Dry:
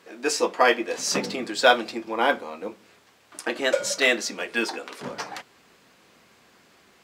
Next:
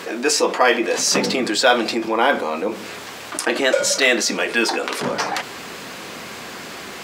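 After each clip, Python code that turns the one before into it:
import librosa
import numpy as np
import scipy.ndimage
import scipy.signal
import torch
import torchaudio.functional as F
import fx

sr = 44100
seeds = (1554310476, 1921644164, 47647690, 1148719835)

y = fx.low_shelf(x, sr, hz=96.0, db=-6.5)
y = fx.env_flatten(y, sr, amount_pct=50)
y = F.gain(torch.from_numpy(y), 1.5).numpy()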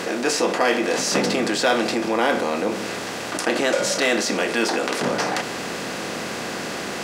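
y = fx.bin_compress(x, sr, power=0.6)
y = fx.low_shelf(y, sr, hz=300.0, db=8.5)
y = F.gain(torch.from_numpy(y), -8.0).numpy()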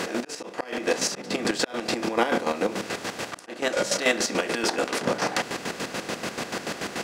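y = fx.auto_swell(x, sr, attack_ms=285.0)
y = fx.chopper(y, sr, hz=6.9, depth_pct=65, duty_pct=40)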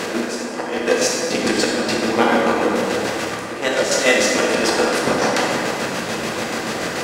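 y = fx.rev_plate(x, sr, seeds[0], rt60_s=2.6, hf_ratio=0.55, predelay_ms=0, drr_db=-3.0)
y = F.gain(torch.from_numpy(y), 3.5).numpy()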